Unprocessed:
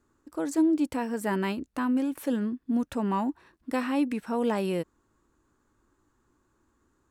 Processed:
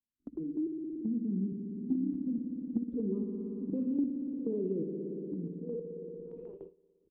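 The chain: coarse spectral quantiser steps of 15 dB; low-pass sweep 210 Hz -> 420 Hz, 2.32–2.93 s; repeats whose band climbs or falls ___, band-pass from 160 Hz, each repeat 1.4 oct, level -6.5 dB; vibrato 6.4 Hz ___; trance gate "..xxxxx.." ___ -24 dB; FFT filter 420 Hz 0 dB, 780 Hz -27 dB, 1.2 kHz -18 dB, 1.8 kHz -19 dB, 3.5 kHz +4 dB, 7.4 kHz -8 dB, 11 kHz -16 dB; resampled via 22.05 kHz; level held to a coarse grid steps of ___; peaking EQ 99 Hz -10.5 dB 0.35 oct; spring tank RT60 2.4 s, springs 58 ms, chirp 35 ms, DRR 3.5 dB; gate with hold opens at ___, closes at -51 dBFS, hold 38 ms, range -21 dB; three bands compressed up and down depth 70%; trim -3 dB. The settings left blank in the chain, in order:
655 ms, 67 cents, 158 bpm, 10 dB, -49 dBFS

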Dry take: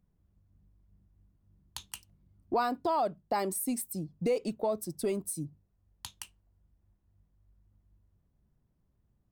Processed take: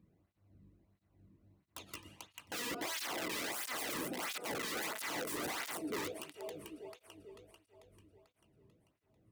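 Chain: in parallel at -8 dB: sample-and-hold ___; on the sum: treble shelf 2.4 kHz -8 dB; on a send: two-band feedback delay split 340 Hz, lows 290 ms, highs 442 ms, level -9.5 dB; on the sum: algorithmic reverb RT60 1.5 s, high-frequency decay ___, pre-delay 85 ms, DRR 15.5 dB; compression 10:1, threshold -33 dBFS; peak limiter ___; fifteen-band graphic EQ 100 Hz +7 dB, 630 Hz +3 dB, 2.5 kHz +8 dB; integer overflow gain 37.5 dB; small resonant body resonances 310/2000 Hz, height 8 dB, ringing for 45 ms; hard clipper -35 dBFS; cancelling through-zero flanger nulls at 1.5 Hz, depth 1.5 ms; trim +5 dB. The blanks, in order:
11×, 0.7×, -30 dBFS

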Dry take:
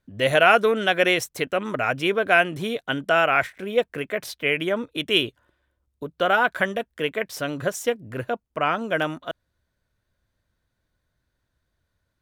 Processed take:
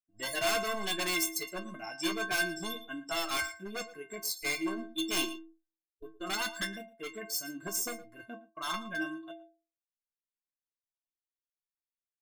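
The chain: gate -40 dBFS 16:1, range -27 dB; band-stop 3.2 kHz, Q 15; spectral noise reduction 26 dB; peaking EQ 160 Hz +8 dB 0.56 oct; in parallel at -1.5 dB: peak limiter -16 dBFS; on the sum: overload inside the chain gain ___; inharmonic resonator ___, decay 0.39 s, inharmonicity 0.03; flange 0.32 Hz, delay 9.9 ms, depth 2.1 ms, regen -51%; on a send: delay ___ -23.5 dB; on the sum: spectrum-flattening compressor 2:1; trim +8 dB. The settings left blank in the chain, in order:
19 dB, 320 Hz, 114 ms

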